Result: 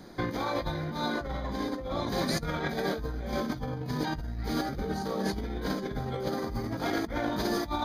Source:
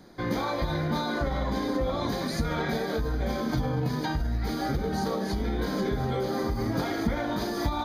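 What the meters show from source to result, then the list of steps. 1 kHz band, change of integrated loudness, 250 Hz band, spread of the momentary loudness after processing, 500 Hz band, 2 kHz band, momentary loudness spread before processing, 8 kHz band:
-2.5 dB, -3.0 dB, -3.0 dB, 4 LU, -3.0 dB, -1.5 dB, 1 LU, -0.5 dB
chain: negative-ratio compressor -31 dBFS, ratio -0.5

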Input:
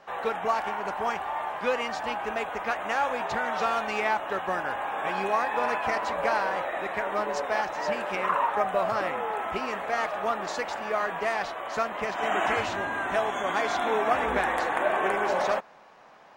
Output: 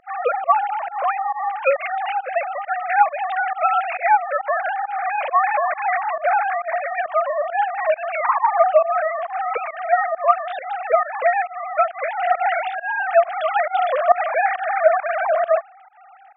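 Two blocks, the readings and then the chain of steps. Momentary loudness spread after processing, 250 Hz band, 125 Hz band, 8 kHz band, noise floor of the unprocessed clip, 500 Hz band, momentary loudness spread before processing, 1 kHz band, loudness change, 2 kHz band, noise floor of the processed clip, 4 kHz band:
6 LU, under -25 dB, under -25 dB, under -35 dB, -44 dBFS, +8.0 dB, 5 LU, +8.5 dB, +7.5 dB, +5.0 dB, -45 dBFS, n/a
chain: sine-wave speech; pump 136 bpm, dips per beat 1, -24 dB, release 0.118 s; gain +8.5 dB

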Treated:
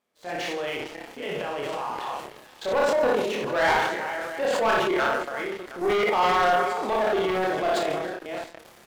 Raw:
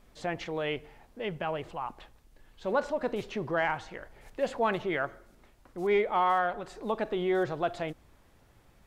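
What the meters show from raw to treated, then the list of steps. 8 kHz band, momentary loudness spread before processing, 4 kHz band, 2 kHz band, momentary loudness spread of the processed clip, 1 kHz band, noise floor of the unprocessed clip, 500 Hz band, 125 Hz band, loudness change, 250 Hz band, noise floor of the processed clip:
n/a, 13 LU, +10.5 dB, +8.5 dB, 13 LU, +7.0 dB, -61 dBFS, +6.5 dB, +0.5 dB, +6.0 dB, +4.0 dB, -51 dBFS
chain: reverse delay 0.323 s, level -10 dB; recorder AGC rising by 7.1 dB/s; HPF 290 Hz 12 dB/oct; level quantiser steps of 15 dB; tapped delay 59/153/310/719 ms -3.5/-13.5/-19/-18.5 dB; sample leveller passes 3; doubler 28 ms -3 dB; transient shaper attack -5 dB, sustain +7 dB

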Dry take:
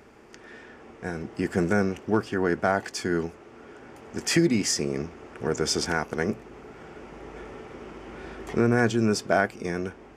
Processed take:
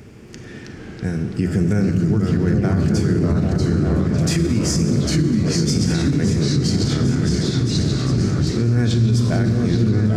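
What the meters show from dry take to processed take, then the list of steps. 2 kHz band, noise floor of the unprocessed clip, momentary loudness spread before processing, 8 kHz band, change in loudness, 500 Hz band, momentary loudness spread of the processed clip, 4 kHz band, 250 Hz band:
-2.0 dB, -49 dBFS, 21 LU, +4.5 dB, +7.5 dB, +2.5 dB, 5 LU, +6.5 dB, +10.0 dB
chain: bell 120 Hz +12.5 dB 1.4 oct; on a send: repeats that get brighter 0.397 s, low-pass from 200 Hz, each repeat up 2 oct, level 0 dB; on the sum: Schroeder reverb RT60 1.3 s, combs from 29 ms, DRR 7.5 dB; echoes that change speed 0.279 s, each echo -2 st, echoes 3; compressor 1.5:1, threshold -32 dBFS, peak gain reduction 8.5 dB; bell 940 Hz -11.5 dB 2 oct; maximiser +18.5 dB; gain -8.5 dB

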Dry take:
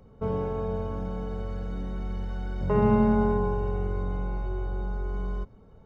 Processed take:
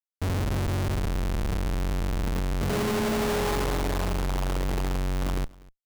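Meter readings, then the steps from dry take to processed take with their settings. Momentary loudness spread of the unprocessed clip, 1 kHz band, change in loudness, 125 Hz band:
12 LU, +0.5 dB, +0.5 dB, +2.5 dB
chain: low-pass sweep 100 Hz -> 990 Hz, 1.89–3.62; Schmitt trigger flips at -37.5 dBFS; on a send: echo 0.245 s -23.5 dB

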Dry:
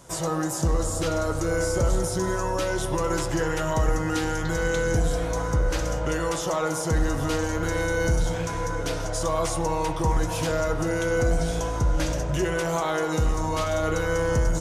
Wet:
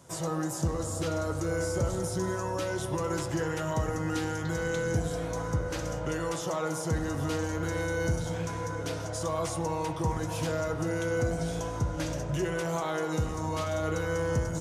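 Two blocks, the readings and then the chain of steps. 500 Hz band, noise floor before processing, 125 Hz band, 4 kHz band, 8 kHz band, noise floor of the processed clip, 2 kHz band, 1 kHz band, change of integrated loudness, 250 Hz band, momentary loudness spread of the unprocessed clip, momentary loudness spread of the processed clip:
-5.5 dB, -29 dBFS, -4.5 dB, -6.5 dB, -6.5 dB, -35 dBFS, -6.5 dB, -6.0 dB, -5.5 dB, -4.0 dB, 3 LU, 3 LU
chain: HPF 73 Hz 24 dB/oct; low shelf 270 Hz +4.5 dB; gain -6.5 dB

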